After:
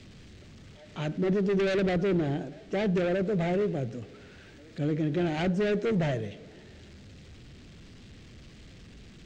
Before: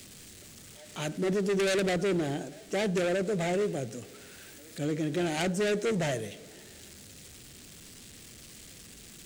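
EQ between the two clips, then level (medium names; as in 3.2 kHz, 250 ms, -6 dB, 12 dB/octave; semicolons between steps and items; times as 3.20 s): distance through air 180 m; bass shelf 180 Hz +8.5 dB; 0.0 dB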